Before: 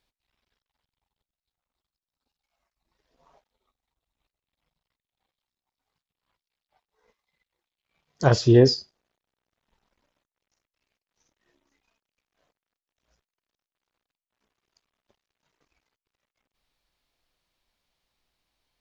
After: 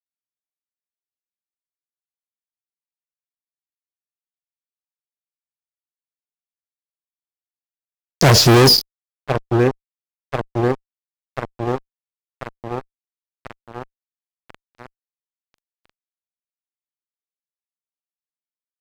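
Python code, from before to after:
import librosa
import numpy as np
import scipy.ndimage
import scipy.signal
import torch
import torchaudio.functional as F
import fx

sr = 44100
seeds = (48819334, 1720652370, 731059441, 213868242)

y = fx.echo_wet_lowpass(x, sr, ms=1038, feedback_pct=78, hz=1700.0, wet_db=-21.0)
y = fx.fuzz(y, sr, gain_db=34.0, gate_db=-39.0)
y = y * librosa.db_to_amplitude(4.5)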